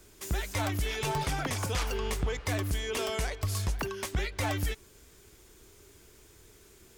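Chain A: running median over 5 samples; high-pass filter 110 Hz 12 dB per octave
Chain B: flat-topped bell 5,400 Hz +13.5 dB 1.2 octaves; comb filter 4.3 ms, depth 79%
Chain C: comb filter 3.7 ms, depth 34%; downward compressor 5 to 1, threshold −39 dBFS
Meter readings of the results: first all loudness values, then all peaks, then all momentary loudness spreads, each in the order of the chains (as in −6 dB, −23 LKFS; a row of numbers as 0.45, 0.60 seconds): −34.5, −26.0, −42.0 LKFS; −20.0, −10.0, −25.5 dBFS; 4, 21, 15 LU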